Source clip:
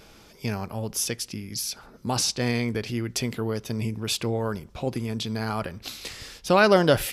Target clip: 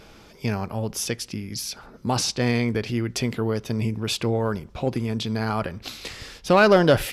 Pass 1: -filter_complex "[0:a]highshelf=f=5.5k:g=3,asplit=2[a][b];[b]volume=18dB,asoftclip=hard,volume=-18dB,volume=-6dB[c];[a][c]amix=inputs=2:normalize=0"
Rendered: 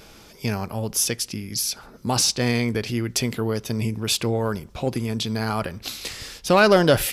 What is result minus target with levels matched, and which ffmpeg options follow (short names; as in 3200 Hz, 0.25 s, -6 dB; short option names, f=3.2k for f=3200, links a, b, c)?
8000 Hz band +6.0 dB
-filter_complex "[0:a]highshelf=f=5.5k:g=-8,asplit=2[a][b];[b]volume=18dB,asoftclip=hard,volume=-18dB,volume=-6dB[c];[a][c]amix=inputs=2:normalize=0"